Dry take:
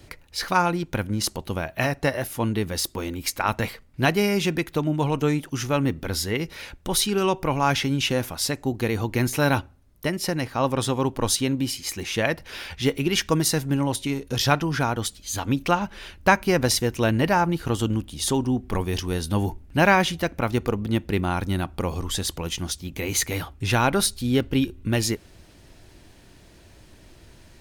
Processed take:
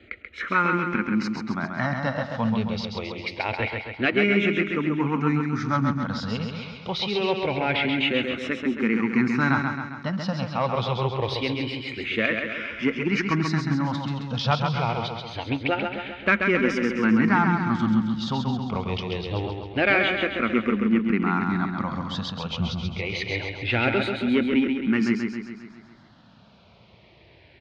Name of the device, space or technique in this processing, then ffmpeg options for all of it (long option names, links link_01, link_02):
barber-pole phaser into a guitar amplifier: -filter_complex "[0:a]asplit=2[link_01][link_02];[link_02]afreqshift=-0.25[link_03];[link_01][link_03]amix=inputs=2:normalize=1,asoftclip=type=tanh:threshold=-14.5dB,lowpass=10000,highpass=81,equalizer=frequency=87:width_type=q:width=4:gain=-5,equalizer=frequency=220:width_type=q:width=4:gain=8,equalizer=frequency=1300:width_type=q:width=4:gain=7,equalizer=frequency=2200:width_type=q:width=4:gain=8,lowpass=frequency=4100:width=0.5412,lowpass=frequency=4100:width=1.3066,asettb=1/sr,asplit=3[link_04][link_05][link_06];[link_04]atrim=end=22.504[link_07];[link_05]atrim=start=22.5:end=22.98,asetpts=PTS-STARTPTS,afade=type=in:duration=0.004:curve=qsin,afade=type=out:start_time=0.476:duration=0.004:curve=qsin,lowshelf=frequency=330:gain=10.5[link_08];[link_06]atrim=start=22.976[link_09];[link_07][link_08]acrossfade=duration=0.004:curve1=hsin:curve2=qsin[link_10];[link_10][link_09]acrossfade=duration=0.004:curve1=qsin:curve2=hsin,aecho=1:1:134|268|402|536|670|804|938:0.562|0.315|0.176|0.0988|0.0553|0.031|0.0173"